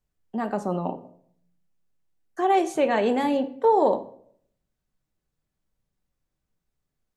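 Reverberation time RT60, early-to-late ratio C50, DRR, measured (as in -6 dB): 0.60 s, 14.5 dB, 8.0 dB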